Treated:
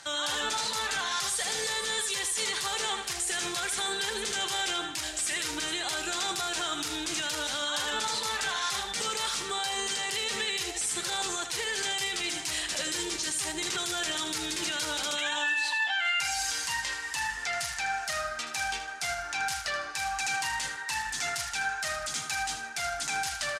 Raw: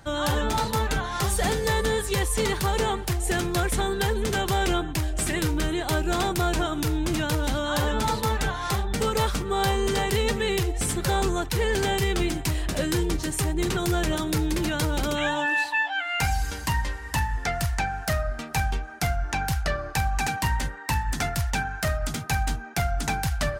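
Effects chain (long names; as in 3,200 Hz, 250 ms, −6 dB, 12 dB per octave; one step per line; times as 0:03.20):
meter weighting curve ITU-R 468
brickwall limiter −22 dBFS, peak gain reduction 16.5 dB
on a send: repeating echo 78 ms, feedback 38%, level −9 dB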